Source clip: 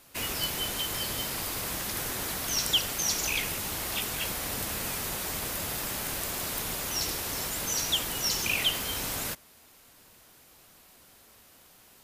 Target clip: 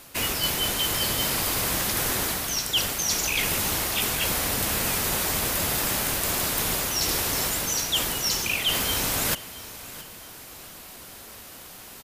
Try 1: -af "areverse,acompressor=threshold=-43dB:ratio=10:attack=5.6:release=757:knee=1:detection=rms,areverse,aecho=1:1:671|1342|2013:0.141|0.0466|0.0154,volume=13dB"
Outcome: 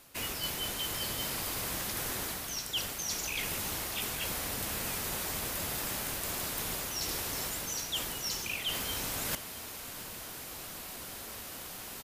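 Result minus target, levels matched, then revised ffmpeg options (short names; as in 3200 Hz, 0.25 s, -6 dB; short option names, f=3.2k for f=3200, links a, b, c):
compressor: peak gain reduction +10 dB
-af "areverse,acompressor=threshold=-32dB:ratio=10:attack=5.6:release=757:knee=1:detection=rms,areverse,aecho=1:1:671|1342|2013:0.141|0.0466|0.0154,volume=13dB"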